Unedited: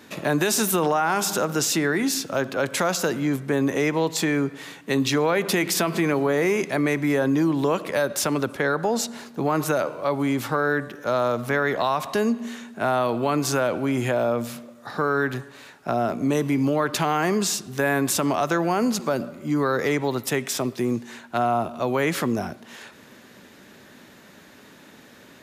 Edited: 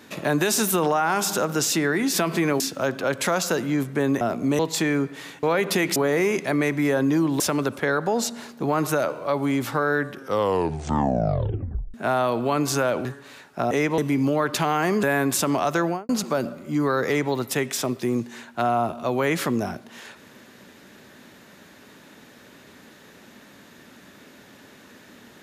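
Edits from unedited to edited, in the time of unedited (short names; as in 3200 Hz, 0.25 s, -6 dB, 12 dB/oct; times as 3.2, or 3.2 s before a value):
3.74–4.01 swap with 16–16.38
4.85–5.21 cut
5.74–6.21 move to 2.13
7.65–8.17 cut
10.87 tape stop 1.84 s
13.82–15.34 cut
17.43–17.79 cut
18.6–18.85 studio fade out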